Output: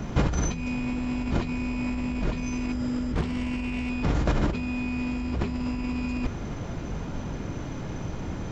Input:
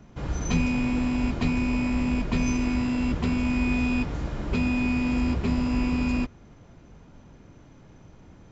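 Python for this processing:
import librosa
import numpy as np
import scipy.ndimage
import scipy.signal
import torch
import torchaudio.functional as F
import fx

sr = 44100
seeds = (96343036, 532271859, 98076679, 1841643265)

y = fx.spec_repair(x, sr, seeds[0], start_s=2.75, length_s=0.35, low_hz=440.0, high_hz=4900.0, source='after')
y = fx.over_compress(y, sr, threshold_db=-35.0, ratio=-1.0)
y = fx.doppler_dist(y, sr, depth_ms=0.34, at=(3.14, 3.9))
y = F.gain(torch.from_numpy(y), 7.5).numpy()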